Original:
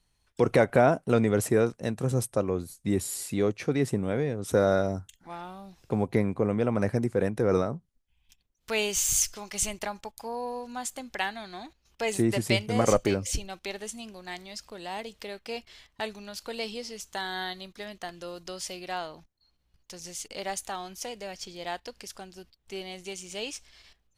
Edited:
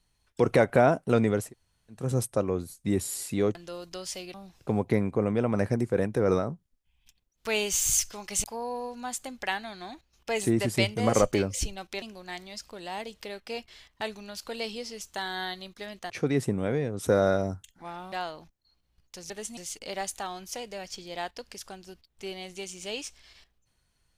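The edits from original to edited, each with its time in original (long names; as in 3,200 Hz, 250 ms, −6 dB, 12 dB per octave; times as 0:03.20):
0:01.42–0:02.00: fill with room tone, crossfade 0.24 s
0:03.55–0:05.57: swap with 0:18.09–0:18.88
0:09.67–0:10.16: remove
0:13.74–0:14.01: move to 0:20.06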